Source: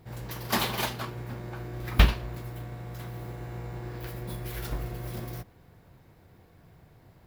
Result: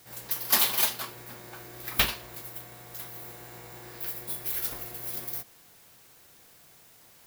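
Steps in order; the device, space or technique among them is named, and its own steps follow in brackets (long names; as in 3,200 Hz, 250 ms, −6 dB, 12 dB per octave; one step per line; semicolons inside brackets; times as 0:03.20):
turntable without a phono preamp (RIAA equalisation recording; white noise bed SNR 24 dB)
level −2.5 dB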